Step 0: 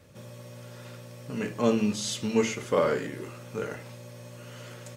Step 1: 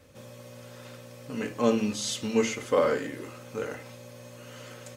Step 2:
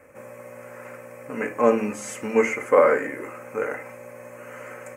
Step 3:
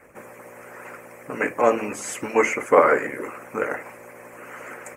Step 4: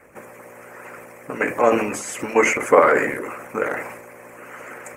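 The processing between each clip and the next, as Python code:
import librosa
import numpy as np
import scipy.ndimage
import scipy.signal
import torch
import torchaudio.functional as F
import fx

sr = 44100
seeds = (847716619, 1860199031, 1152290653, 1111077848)

y1 = fx.peak_eq(x, sr, hz=190.0, db=-8.5, octaves=0.32)
y1 = y1 + 0.36 * np.pad(y1, (int(3.9 * sr / 1000.0), 0))[:len(y1)]
y2 = fx.curve_eq(y1, sr, hz=(110.0, 530.0, 2300.0, 3600.0, 7900.0), db=(0, 13, 15, -17, 7))
y2 = y2 * librosa.db_to_amplitude(-5.5)
y3 = fx.hpss(y2, sr, part='harmonic', gain_db=-16)
y3 = y3 * librosa.db_to_amplitude(8.0)
y4 = fx.transient(y3, sr, attack_db=3, sustain_db=8)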